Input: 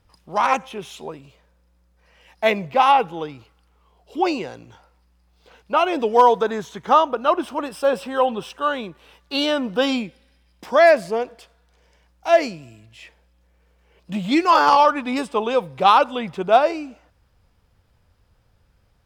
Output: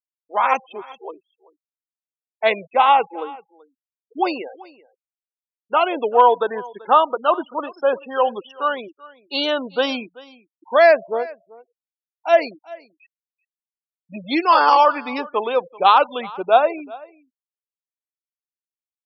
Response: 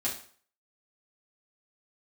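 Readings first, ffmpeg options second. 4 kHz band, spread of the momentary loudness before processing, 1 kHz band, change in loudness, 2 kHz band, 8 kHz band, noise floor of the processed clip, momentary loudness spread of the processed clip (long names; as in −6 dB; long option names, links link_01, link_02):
0.0 dB, 18 LU, +1.0 dB, +0.5 dB, +1.0 dB, below −10 dB, below −85 dBFS, 18 LU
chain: -filter_complex "[0:a]highpass=350,afftfilt=real='re*gte(hypot(re,im),0.0447)':imag='im*gte(hypot(re,im),0.0447)':win_size=1024:overlap=0.75,asplit=2[link_01][link_02];[link_02]aecho=0:1:385:0.0841[link_03];[link_01][link_03]amix=inputs=2:normalize=0,volume=1dB"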